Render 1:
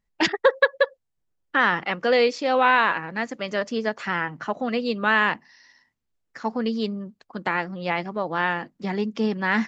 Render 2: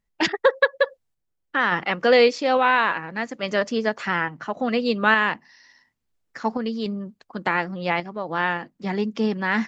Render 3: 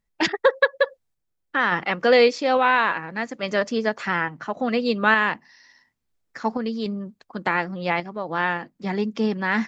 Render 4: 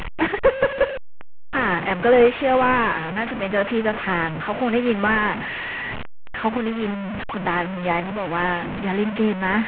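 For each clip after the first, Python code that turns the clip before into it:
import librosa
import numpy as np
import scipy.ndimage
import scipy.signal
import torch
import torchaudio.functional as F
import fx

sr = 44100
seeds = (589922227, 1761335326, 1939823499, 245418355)

y1 = fx.tremolo_random(x, sr, seeds[0], hz=3.5, depth_pct=55)
y1 = y1 * librosa.db_to_amplitude(4.0)
y2 = fx.notch(y1, sr, hz=2900.0, q=27.0)
y3 = fx.delta_mod(y2, sr, bps=16000, step_db=-24.5)
y3 = y3 * librosa.db_to_amplitude(2.5)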